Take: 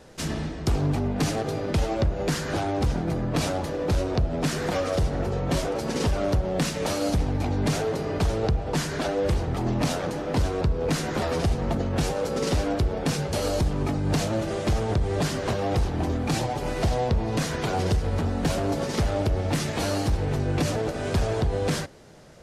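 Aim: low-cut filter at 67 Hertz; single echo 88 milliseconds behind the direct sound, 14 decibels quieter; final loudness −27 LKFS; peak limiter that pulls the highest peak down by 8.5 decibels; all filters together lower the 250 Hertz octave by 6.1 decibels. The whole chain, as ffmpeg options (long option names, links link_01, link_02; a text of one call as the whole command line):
ffmpeg -i in.wav -af "highpass=67,equalizer=frequency=250:width_type=o:gain=-9,alimiter=limit=-23dB:level=0:latency=1,aecho=1:1:88:0.2,volume=5dB" out.wav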